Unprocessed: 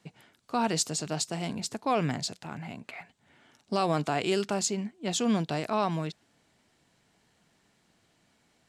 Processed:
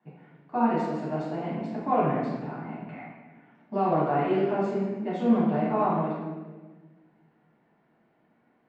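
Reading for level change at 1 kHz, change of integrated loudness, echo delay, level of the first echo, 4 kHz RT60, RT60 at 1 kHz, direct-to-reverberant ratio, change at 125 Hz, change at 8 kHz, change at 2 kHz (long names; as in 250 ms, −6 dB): +4.5 dB, +2.5 dB, no echo audible, no echo audible, 1.0 s, 1.2 s, −8.0 dB, +1.5 dB, below −30 dB, −2.0 dB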